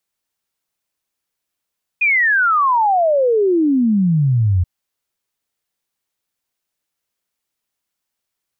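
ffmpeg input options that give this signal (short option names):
-f lavfi -i "aevalsrc='0.266*clip(min(t,2.63-t)/0.01,0,1)*sin(2*PI*2500*2.63/log(85/2500)*(exp(log(85/2500)*t/2.63)-1))':d=2.63:s=44100"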